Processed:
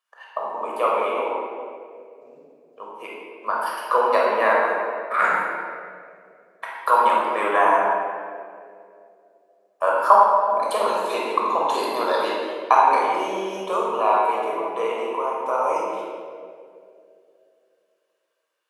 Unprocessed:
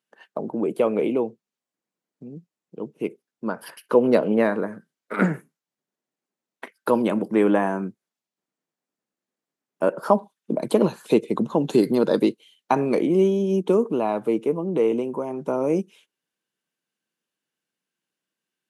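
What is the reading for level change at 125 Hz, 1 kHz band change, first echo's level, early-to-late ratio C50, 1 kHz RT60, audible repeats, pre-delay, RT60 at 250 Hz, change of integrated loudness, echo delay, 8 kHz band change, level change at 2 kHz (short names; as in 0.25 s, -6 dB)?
under -20 dB, +12.0 dB, none, -1.5 dB, 1.9 s, none, 11 ms, 2.7 s, +1.5 dB, none, n/a, +9.0 dB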